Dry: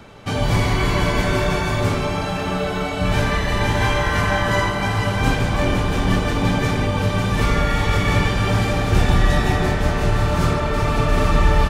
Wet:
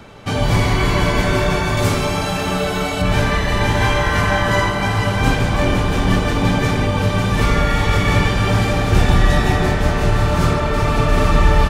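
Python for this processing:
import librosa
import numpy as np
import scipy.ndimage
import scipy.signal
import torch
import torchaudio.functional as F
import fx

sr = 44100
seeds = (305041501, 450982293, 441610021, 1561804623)

y = fx.high_shelf(x, sr, hz=5000.0, db=9.5, at=(1.77, 3.02))
y = F.gain(torch.from_numpy(y), 2.5).numpy()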